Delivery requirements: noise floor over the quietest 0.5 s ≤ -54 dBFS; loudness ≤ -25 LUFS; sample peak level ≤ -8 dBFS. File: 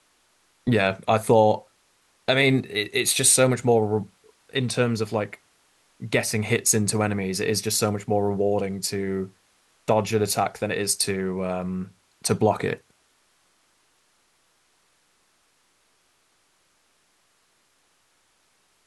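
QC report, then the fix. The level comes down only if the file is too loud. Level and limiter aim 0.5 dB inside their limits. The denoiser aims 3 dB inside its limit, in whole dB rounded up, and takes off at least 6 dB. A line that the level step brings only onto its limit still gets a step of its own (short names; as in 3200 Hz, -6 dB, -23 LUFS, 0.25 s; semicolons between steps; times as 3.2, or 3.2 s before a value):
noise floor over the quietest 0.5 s -66 dBFS: OK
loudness -23.0 LUFS: fail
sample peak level -4.0 dBFS: fail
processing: gain -2.5 dB; limiter -8.5 dBFS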